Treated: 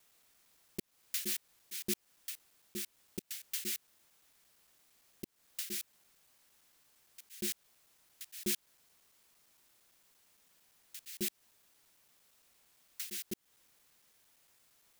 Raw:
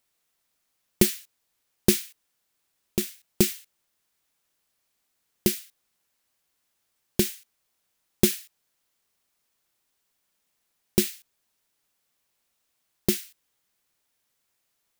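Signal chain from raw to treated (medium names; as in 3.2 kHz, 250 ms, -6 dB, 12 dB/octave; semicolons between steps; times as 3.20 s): slices played last to first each 114 ms, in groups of 3; slow attack 246 ms; trim +7 dB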